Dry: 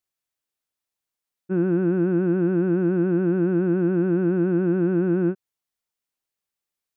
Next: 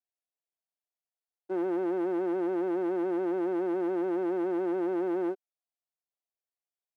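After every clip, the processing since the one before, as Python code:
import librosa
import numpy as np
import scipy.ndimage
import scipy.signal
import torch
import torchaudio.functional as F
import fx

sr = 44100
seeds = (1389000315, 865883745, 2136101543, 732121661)

y = fx.peak_eq(x, sr, hz=700.0, db=12.5, octaves=0.49)
y = fx.leveller(y, sr, passes=2)
y = fx.ladder_highpass(y, sr, hz=330.0, resonance_pct=40)
y = y * 10.0 ** (-5.0 / 20.0)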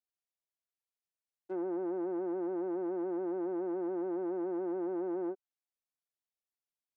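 y = fx.env_lowpass_down(x, sr, base_hz=1200.0, full_db=-28.0)
y = y * 10.0 ** (-5.5 / 20.0)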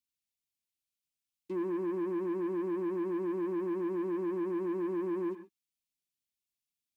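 y = scipy.signal.sosfilt(scipy.signal.cheby2(4, 40, [480.0, 1400.0], 'bandstop', fs=sr, output='sos'), x)
y = fx.leveller(y, sr, passes=2)
y = fx.rev_gated(y, sr, seeds[0], gate_ms=150, shape='rising', drr_db=10.5)
y = y * 10.0 ** (7.5 / 20.0)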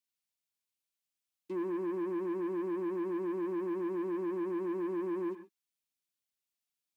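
y = fx.low_shelf(x, sr, hz=160.0, db=-7.5)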